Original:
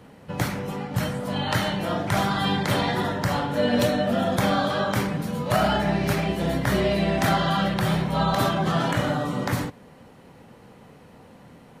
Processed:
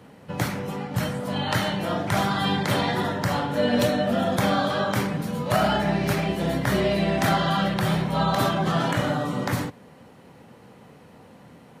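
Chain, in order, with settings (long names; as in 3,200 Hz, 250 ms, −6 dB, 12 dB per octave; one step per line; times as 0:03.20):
high-pass filter 72 Hz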